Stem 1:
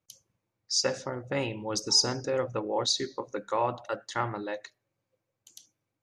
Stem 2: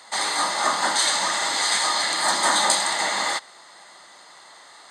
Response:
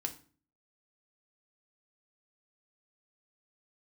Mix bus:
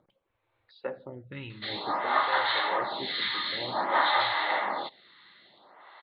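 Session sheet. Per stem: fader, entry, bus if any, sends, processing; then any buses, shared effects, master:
−5.0 dB, 0.00 s, no send, no processing
−2.0 dB, 1.50 s, no send, no processing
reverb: not used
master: Butterworth low-pass 4,100 Hz 96 dB per octave; upward compression, threshold −50 dBFS; phaser with staggered stages 0.53 Hz

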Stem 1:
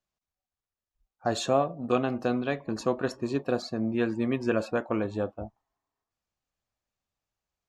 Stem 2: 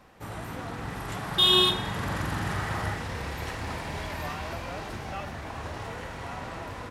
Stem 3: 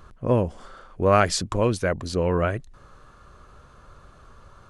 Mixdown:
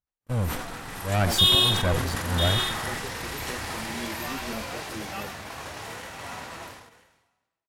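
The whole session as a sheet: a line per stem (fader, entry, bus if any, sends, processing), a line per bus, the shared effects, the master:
−12.5 dB, 0.00 s, no send, no echo send, string-ensemble chorus
−8.5 dB, 0.00 s, no send, echo send −9 dB, spectral tilt +3.5 dB per octave; automatic gain control gain up to 7 dB
−1.5 dB, 0.00 s, no send, no echo send, lower of the sound and its delayed copy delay 1.3 ms; volume swells 396 ms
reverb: not used
echo: single-tap delay 997 ms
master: noise gate −39 dBFS, range −48 dB; low-shelf EQ 470 Hz +6.5 dB; level that may fall only so fast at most 52 dB per second

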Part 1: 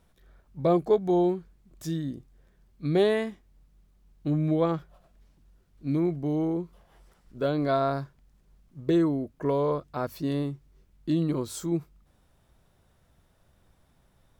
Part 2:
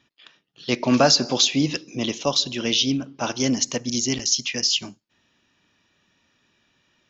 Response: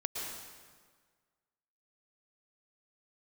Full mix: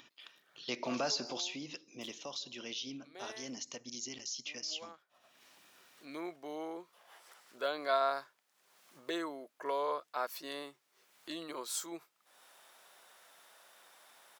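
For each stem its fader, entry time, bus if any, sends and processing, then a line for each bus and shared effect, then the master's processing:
+1.0 dB, 0.20 s, no send, Bessel high-pass filter 870 Hz, order 2; automatic ducking −17 dB, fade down 0.95 s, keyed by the second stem
0:01.06 −7.5 dB → 0:01.65 −15 dB, 0.00 s, no send, notch filter 1,700 Hz, Q 18; brickwall limiter −15.5 dBFS, peak gain reduction 10.5 dB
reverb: not used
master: high-pass filter 460 Hz 6 dB per octave; upward compression, threshold −49 dBFS

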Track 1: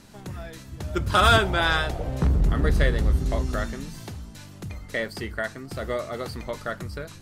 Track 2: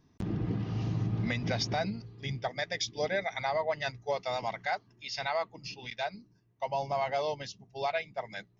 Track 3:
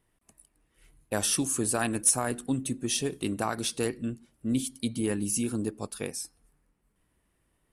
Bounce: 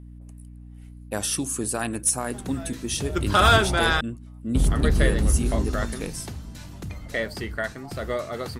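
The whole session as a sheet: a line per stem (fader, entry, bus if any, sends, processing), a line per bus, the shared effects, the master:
+0.5 dB, 2.20 s, muted 0:04.01–0:04.55, no send, no processing
−11.0 dB, 0.00 s, no send, band-pass on a step sequencer 3.4 Hz 580–6,900 Hz; automatic ducking −13 dB, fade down 0.20 s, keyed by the third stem
+0.5 dB, 0.00 s, no send, mains hum 60 Hz, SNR 11 dB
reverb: not used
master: no processing

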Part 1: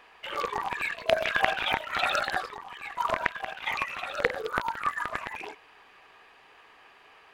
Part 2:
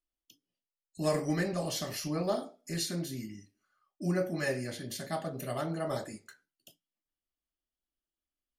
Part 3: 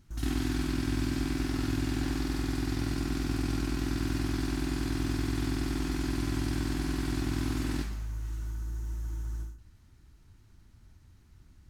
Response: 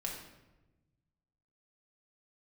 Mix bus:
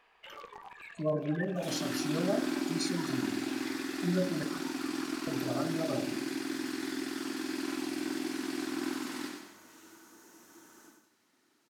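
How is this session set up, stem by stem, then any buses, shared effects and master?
−12.5 dB, 0.00 s, send −12 dB, no echo send, downward compressor 6 to 1, threshold −33 dBFS, peak gain reduction 15.5 dB; brickwall limiter −24 dBFS, peak gain reduction 9.5 dB
−3.5 dB, 0.00 s, muted 0:04.43–0:05.27, send −7 dB, no echo send, gate on every frequency bin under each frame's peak −15 dB strong
+2.5 dB, 1.45 s, no send, echo send −5.5 dB, high-pass filter 280 Hz 24 dB per octave; flanger 1.6 Hz, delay 1.3 ms, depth 9.4 ms, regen +64%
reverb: on, RT60 1.1 s, pre-delay 4 ms
echo: repeating echo 95 ms, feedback 34%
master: no processing

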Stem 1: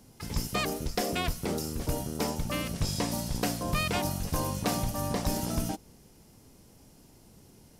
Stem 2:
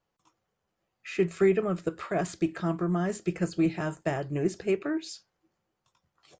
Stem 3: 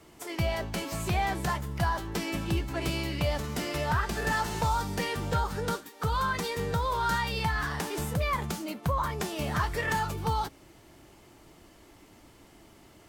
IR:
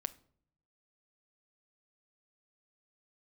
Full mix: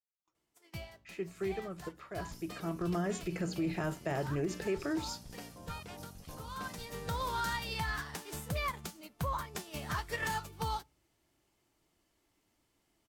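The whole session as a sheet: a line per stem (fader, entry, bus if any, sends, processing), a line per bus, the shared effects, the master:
−18.5 dB, 1.95 s, no send, no processing
0:02.43 −13 dB → 0:02.99 −1 dB, 0.00 s, no send, mains-hum notches 60/120/180/240/300 Hz; noise gate with hold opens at −52 dBFS
−2.0 dB, 0.35 s, send −18 dB, high-shelf EQ 2,100 Hz +6.5 dB; expander for the loud parts 2.5 to 1, over −38 dBFS; automatic ducking −21 dB, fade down 1.00 s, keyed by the second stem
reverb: on, RT60 0.60 s, pre-delay 7 ms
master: brickwall limiter −26 dBFS, peak gain reduction 10 dB

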